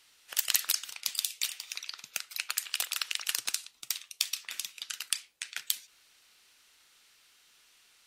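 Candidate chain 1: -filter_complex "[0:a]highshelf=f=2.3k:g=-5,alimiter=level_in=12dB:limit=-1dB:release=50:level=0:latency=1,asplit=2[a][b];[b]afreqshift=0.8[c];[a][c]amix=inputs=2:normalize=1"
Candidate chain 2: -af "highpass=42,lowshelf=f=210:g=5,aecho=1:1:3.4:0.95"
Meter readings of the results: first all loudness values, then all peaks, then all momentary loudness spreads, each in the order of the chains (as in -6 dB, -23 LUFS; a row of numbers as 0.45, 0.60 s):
-28.5, -30.0 LUFS; -2.0, -3.0 dBFS; 9, 11 LU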